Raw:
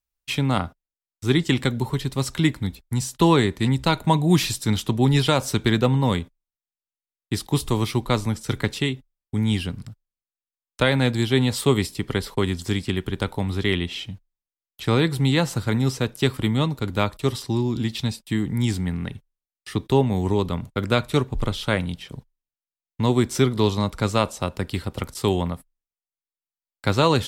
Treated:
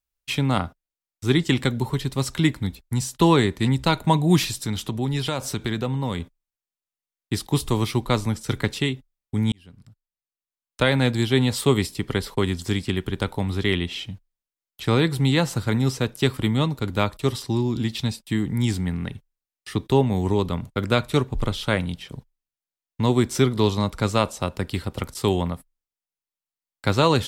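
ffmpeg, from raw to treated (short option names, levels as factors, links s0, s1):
-filter_complex "[0:a]asettb=1/sr,asplit=3[s0][s1][s2];[s0]atrim=end=4.444[s3];[s1]atrim=start=4.44:end=6.2,asetpts=PTS-STARTPTS,afade=t=in:d=0.004:c=qsin,afade=t=out:st=1.756:d=0.004:c=qsin,acompressor=threshold=0.0501:ratio=2:attack=3.2:release=140:knee=1:detection=peak[s4];[s2]atrim=start=6.196[s5];[s3][s4]acrossfade=d=0.004:c1=hsin:c2=qsin[s6];[s6][s5]acrossfade=d=0.004:c1=qsin:c2=hsin,asplit=2[s7][s8];[s7]atrim=end=9.52,asetpts=PTS-STARTPTS,afade=t=out:st=9.516:d=0.004:c=hsin[s9];[s8]atrim=start=9.52,asetpts=PTS-STARTPTS,afade=t=in:d=1.38[s10];[s9][s10]concat=n=2:v=0:a=1"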